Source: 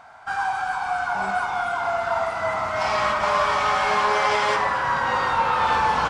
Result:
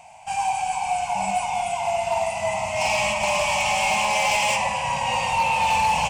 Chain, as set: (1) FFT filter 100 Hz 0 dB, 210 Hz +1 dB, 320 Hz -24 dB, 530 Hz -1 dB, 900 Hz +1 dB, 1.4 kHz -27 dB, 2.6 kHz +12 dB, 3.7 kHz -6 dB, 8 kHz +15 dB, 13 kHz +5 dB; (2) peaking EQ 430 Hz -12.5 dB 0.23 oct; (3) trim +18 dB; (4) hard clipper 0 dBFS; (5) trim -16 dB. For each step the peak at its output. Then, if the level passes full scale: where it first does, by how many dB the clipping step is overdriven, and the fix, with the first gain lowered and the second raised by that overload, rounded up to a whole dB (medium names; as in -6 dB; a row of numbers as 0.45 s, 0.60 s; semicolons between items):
-10.0 dBFS, -10.0 dBFS, +8.0 dBFS, 0.0 dBFS, -16.0 dBFS; step 3, 8.0 dB; step 3 +10 dB, step 5 -8 dB